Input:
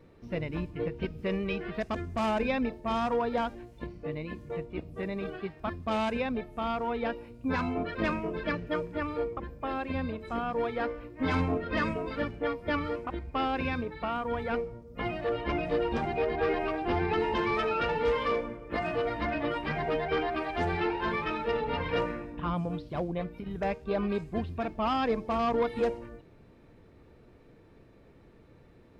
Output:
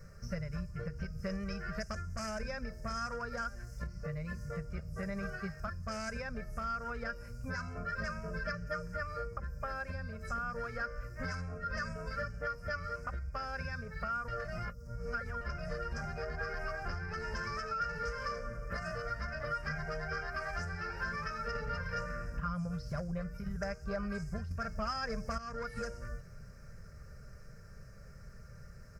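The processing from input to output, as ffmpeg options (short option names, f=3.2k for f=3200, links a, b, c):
-filter_complex "[0:a]asplit=7[a][b][c][d][e][f][g];[a]atrim=end=14.282[h];[b]atrim=start=14.278:end=15.412,asetpts=PTS-STARTPTS,areverse[i];[c]atrim=start=15.408:end=21.552[j];[d]atrim=start=21.548:end=23.372,asetpts=PTS-STARTPTS,volume=4.5dB[k];[e]atrim=start=23.368:end=24.512[l];[f]atrim=start=24.508:end=25.382,asetpts=PTS-STARTPTS,volume=11.5dB[m];[g]atrim=start=25.378[n];[h][i]acrossfade=d=0.004:c1=hsin:c2=hsin[o];[o][j]acrossfade=d=0.004:c1=hsin:c2=hsin[p];[p][k]acrossfade=d=0.004:c1=hsin:c2=hsin[q];[q][l]acrossfade=d=0.004:c1=hsin:c2=hsin[r];[r][m]acrossfade=d=0.004:c1=hsin:c2=hsin[s];[s][n]acrossfade=d=0.004:c1=hsin:c2=hsin,firequalizer=gain_entry='entry(120,0);entry(310,-29);entry(530,-8);entry(880,-20);entry(1400,1);entry(2300,-14);entry(3600,-26);entry(5100,9);entry(9000,1)':delay=0.05:min_phase=1,acompressor=threshold=-46dB:ratio=6,aecho=1:1:5:0.41,volume=10dB"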